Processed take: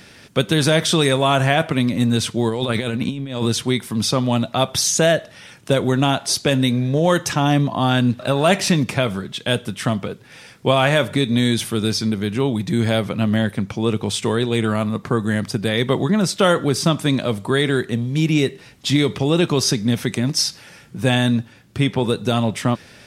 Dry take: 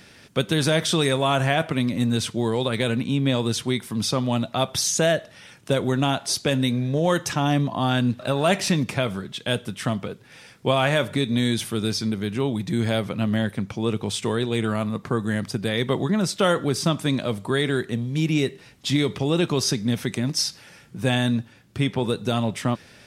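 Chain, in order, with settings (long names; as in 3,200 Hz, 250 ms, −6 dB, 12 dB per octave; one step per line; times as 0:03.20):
0:02.49–0:03.46: compressor whose output falls as the input rises −26 dBFS, ratio −0.5
level +4.5 dB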